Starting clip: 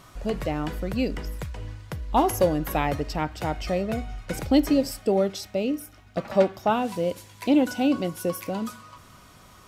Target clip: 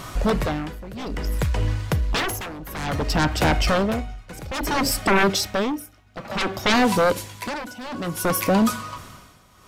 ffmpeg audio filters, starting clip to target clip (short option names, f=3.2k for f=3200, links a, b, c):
-af "aeval=exprs='0.447*sin(PI/2*7.08*val(0)/0.447)':c=same,tremolo=f=0.58:d=0.88,volume=-6.5dB"